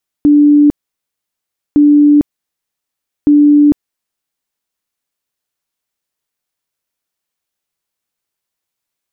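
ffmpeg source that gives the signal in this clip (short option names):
-f lavfi -i "aevalsrc='0.668*sin(2*PI*293*mod(t,1.51))*lt(mod(t,1.51),132/293)':d=4.53:s=44100"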